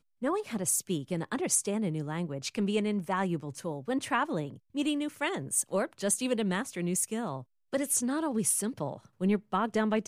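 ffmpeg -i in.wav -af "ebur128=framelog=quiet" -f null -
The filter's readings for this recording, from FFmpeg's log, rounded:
Integrated loudness:
  I:         -30.8 LUFS
  Threshold: -40.8 LUFS
Loudness range:
  LRA:         1.7 LU
  Threshold: -51.0 LUFS
  LRA low:   -32.0 LUFS
  LRA high:  -30.3 LUFS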